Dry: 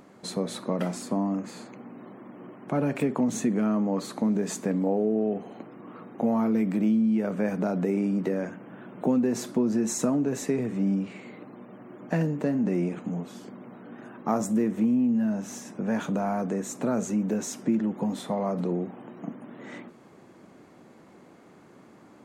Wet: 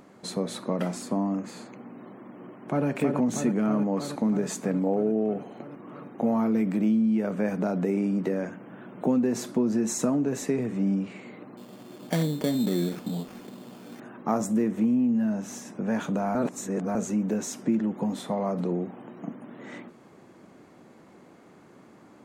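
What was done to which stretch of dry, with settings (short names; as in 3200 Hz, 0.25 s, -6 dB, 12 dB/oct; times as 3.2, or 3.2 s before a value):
2.33–2.87 echo throw 0.32 s, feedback 80%, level -5 dB
11.57–14 sample-rate reducer 3900 Hz
16.35–16.95 reverse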